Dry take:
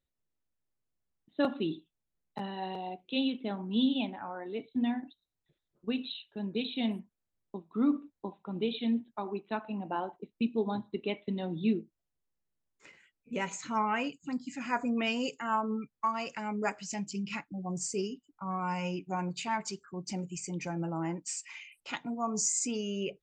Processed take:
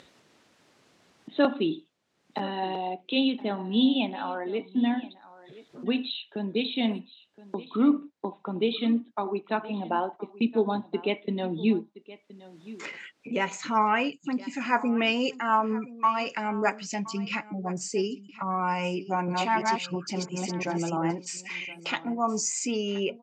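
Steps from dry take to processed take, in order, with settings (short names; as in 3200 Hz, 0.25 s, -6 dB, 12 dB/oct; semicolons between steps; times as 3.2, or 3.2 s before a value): 18.94–21.11 reverse delay 0.338 s, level -1.5 dB; upward compressor, threshold -34 dBFS; BPF 210–5100 Hz; echo 1.021 s -18.5 dB; gain +7 dB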